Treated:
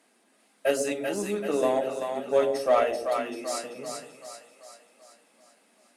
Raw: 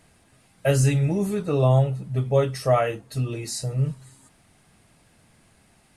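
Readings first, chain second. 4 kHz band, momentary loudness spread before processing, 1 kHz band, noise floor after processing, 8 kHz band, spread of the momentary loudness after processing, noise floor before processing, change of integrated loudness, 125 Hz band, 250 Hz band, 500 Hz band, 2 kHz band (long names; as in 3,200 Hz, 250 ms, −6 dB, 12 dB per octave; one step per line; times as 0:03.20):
−2.0 dB, 9 LU, 0.0 dB, −66 dBFS, −3.0 dB, 16 LU, −60 dBFS, −4.0 dB, −28.0 dB, −6.5 dB, −0.5 dB, −0.5 dB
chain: elliptic high-pass filter 230 Hz, stop band 60 dB
harmonic generator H 7 −28 dB, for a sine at −9.5 dBFS
echo with a time of its own for lows and highs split 580 Hz, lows 116 ms, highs 386 ms, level −4.5 dB
level −1.5 dB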